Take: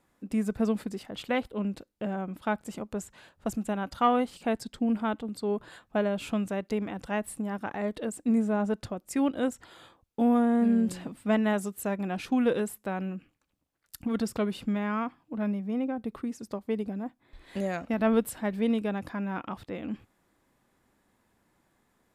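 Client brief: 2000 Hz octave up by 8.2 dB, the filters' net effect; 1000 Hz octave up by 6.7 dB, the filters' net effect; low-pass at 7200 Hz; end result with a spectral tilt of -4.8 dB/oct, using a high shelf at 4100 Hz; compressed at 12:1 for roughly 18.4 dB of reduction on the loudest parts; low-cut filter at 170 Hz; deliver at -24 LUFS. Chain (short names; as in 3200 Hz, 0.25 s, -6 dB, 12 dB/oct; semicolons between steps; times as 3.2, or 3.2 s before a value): HPF 170 Hz; LPF 7200 Hz; bell 1000 Hz +7 dB; bell 2000 Hz +7 dB; high shelf 4100 Hz +5 dB; compressor 12:1, threshold -30 dBFS; gain +12.5 dB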